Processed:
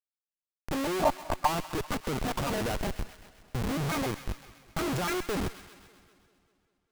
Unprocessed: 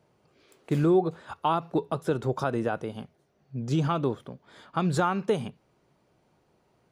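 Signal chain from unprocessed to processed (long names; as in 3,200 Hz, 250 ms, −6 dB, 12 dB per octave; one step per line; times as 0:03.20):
pitch shifter gated in a rhythm +10.5 semitones, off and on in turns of 145 ms
comparator with hysteresis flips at −33 dBFS
gain on a spectral selection 0:01.03–0:01.47, 550–1,200 Hz +12 dB
on a send: delay with a high-pass on its return 130 ms, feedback 61%, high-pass 1,400 Hz, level −11.5 dB
on the sum: feedback echo with a swinging delay time 197 ms, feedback 61%, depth 70 cents, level −23 dB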